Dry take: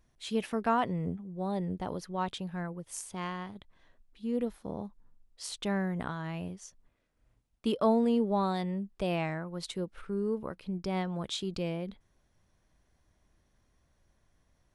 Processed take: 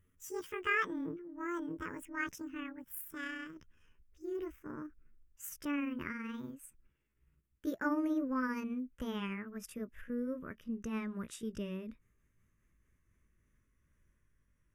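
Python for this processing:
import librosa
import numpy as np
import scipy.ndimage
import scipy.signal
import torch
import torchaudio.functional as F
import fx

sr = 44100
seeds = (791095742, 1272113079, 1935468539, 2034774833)

y = fx.pitch_glide(x, sr, semitones=10.5, runs='ending unshifted')
y = fx.fixed_phaser(y, sr, hz=1800.0, stages=4)
y = y * 10.0 ** (-1.5 / 20.0)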